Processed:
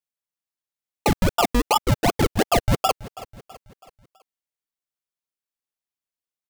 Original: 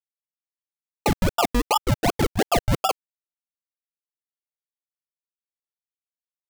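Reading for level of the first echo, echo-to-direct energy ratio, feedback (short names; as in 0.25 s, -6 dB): -19.0 dB, -18.0 dB, 49%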